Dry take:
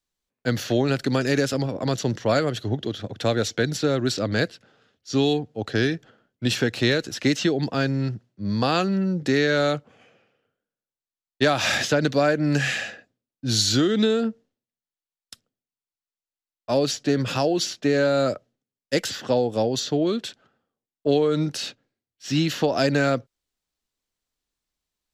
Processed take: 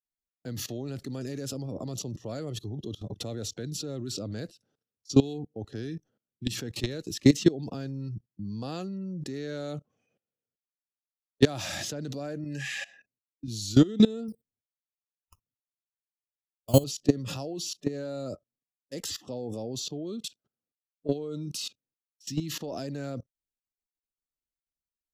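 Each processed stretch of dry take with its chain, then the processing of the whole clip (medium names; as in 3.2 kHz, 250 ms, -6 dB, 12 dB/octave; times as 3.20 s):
12.44–13.48 s: compression 5:1, threshold -32 dBFS + peaking EQ 1.9 kHz +7.5 dB 2 oct + band-stop 1.3 kHz, Q 9.3
14.28–16.84 s: decimation with a swept rate 8× 1.3 Hz + peaking EQ 110 Hz +11 dB 0.85 oct
whole clip: spectral noise reduction 18 dB; peaking EQ 1.8 kHz -12.5 dB 3 oct; level held to a coarse grid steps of 21 dB; trim +7 dB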